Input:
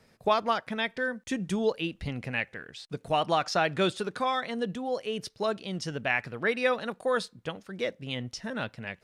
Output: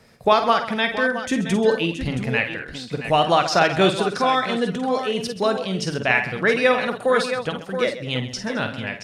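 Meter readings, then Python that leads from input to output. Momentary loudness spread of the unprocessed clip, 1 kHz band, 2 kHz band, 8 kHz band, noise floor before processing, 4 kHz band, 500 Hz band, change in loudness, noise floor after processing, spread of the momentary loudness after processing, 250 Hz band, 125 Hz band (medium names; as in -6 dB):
10 LU, +9.5 dB, +9.5 dB, +9.0 dB, -64 dBFS, +9.0 dB, +9.0 dB, +9.0 dB, -37 dBFS, 9 LU, +9.5 dB, +9.5 dB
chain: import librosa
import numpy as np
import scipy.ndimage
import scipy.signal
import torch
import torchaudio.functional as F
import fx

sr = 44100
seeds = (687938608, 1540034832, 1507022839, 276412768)

y = fx.echo_multitap(x, sr, ms=(47, 54, 131, 215, 670, 674), db=(-9.5, -11.5, -13.5, -19.0, -18.0, -11.5))
y = y * librosa.db_to_amplitude(8.0)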